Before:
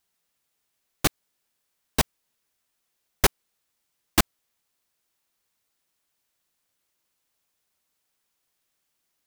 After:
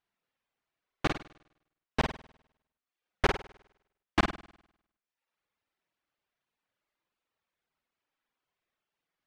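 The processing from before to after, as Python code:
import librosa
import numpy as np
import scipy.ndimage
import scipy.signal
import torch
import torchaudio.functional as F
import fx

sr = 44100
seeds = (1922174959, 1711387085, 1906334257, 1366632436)

p1 = scipy.signal.sosfilt(scipy.signal.butter(2, 2600.0, 'lowpass', fs=sr, output='sos'), x)
p2 = fx.low_shelf(p1, sr, hz=220.0, db=-3.5)
p3 = p2 + fx.room_flutter(p2, sr, wall_m=8.7, rt60_s=0.78, dry=0)
p4 = fx.dereverb_blind(p3, sr, rt60_s=0.82)
y = p4 * librosa.db_to_amplitude(-3.0)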